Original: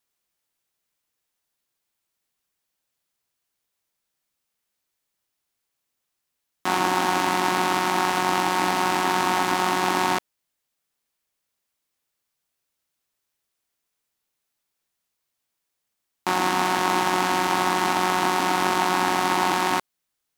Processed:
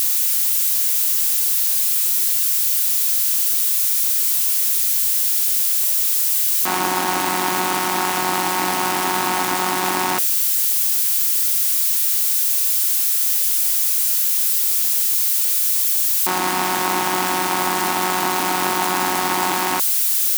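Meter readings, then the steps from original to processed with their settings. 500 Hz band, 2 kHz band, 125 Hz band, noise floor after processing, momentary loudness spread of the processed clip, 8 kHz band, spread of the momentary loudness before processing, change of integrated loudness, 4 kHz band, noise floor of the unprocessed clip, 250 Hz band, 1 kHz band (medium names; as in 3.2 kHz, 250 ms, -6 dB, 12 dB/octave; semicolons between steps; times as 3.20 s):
+1.0 dB, +2.0 dB, no reading, -21 dBFS, 4 LU, +17.0 dB, 3 LU, +6.5 dB, +6.5 dB, -80 dBFS, +1.0 dB, +1.0 dB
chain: zero-crossing glitches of -15.5 dBFS; trim +1 dB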